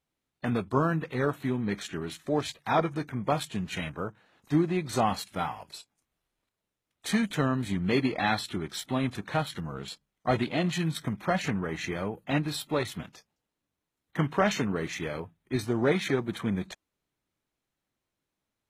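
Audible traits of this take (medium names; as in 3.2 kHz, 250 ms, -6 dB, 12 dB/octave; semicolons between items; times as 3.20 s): noise floor -86 dBFS; spectral tilt -5.0 dB/octave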